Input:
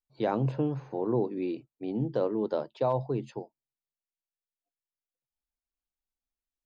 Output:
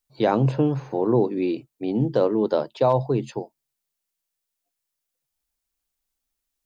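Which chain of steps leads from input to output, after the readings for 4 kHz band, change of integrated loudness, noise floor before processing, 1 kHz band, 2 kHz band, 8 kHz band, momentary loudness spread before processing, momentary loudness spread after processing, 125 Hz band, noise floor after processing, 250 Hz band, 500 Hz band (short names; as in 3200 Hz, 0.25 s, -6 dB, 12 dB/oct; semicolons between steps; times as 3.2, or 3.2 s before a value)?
+10.5 dB, +8.0 dB, under -85 dBFS, +8.0 dB, +9.0 dB, n/a, 8 LU, 8 LU, +8.0 dB, -82 dBFS, +8.0 dB, +8.0 dB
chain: high shelf 4500 Hz +7 dB; gain +8 dB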